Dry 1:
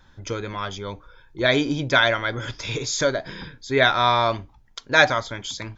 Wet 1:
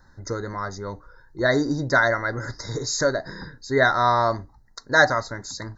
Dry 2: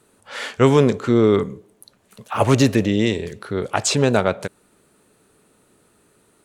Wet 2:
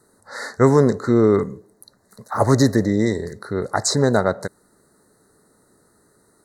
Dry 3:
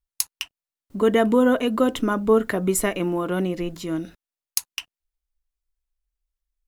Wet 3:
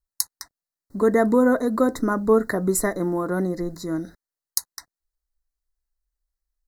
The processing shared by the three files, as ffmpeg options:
-af "asuperstop=centerf=2800:order=20:qfactor=1.6"

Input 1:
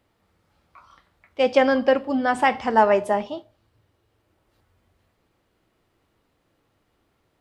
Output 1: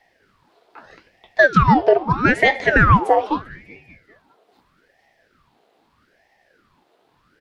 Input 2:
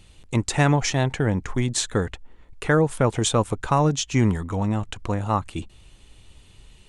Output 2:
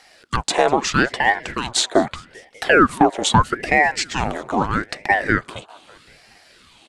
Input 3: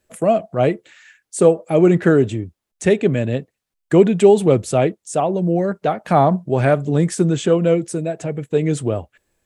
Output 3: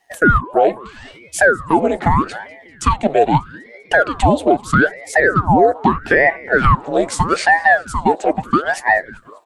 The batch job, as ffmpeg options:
-filter_complex "[0:a]highpass=f=550:t=q:w=4.9,highshelf=f=8800:g=-4,alimiter=limit=0.355:level=0:latency=1:release=455,equalizer=f=3900:w=2.2:g=6,asplit=2[s0][s1];[s1]asplit=5[s2][s3][s4][s5][s6];[s2]adelay=197,afreqshift=110,volume=0.0668[s7];[s3]adelay=394,afreqshift=220,volume=0.0422[s8];[s4]adelay=591,afreqshift=330,volume=0.0266[s9];[s5]adelay=788,afreqshift=440,volume=0.0168[s10];[s6]adelay=985,afreqshift=550,volume=0.0105[s11];[s7][s8][s9][s10][s11]amix=inputs=5:normalize=0[s12];[s0][s12]amix=inputs=2:normalize=0,aeval=exprs='val(0)*sin(2*PI*720*n/s+720*0.85/0.79*sin(2*PI*0.79*n/s))':c=same,volume=2.24"

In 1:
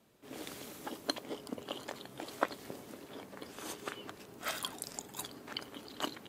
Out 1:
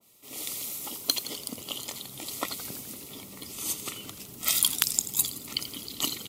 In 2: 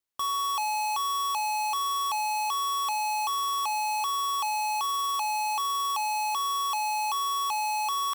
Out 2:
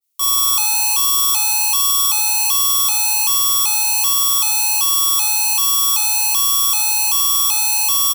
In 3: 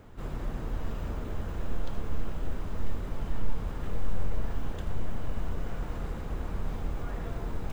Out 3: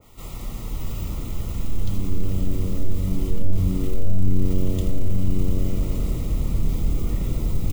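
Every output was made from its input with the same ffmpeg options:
-filter_complex "[0:a]asubboost=boost=5.5:cutoff=250,asuperstop=centerf=1600:order=8:qfactor=3.4,asoftclip=type=tanh:threshold=0.562,crystalizer=i=7.5:c=0,asplit=2[s0][s1];[s1]asplit=7[s2][s3][s4][s5][s6][s7][s8];[s2]adelay=84,afreqshift=93,volume=0.2[s9];[s3]adelay=168,afreqshift=186,volume=0.123[s10];[s4]adelay=252,afreqshift=279,volume=0.0767[s11];[s5]adelay=336,afreqshift=372,volume=0.0473[s12];[s6]adelay=420,afreqshift=465,volume=0.0295[s13];[s7]adelay=504,afreqshift=558,volume=0.0182[s14];[s8]adelay=588,afreqshift=651,volume=0.0114[s15];[s9][s10][s11][s12][s13][s14][s15]amix=inputs=7:normalize=0[s16];[s0][s16]amix=inputs=2:normalize=0,aeval=exprs='(mod(1.33*val(0)+1,2)-1)/1.33':c=same,adynamicequalizer=threshold=0.0251:dfrequency=1900:dqfactor=0.7:tfrequency=1900:tqfactor=0.7:attack=5:release=100:ratio=0.375:range=2.5:mode=boostabove:tftype=highshelf,volume=0.708"

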